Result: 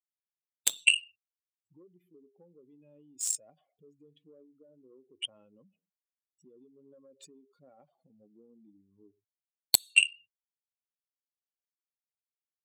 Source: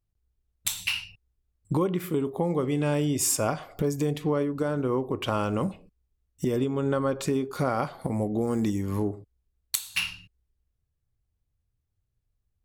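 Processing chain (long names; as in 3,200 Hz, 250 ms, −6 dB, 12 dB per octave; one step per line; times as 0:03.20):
expanding power law on the bin magnitudes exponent 2.5
high-pass filter 230 Hz 12 dB per octave
high shelf with overshoot 2,000 Hz +13 dB, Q 3
hollow resonant body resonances 1,800 Hz, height 15 dB
harmonic generator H 3 −10 dB, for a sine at 3.5 dBFS
level −4.5 dB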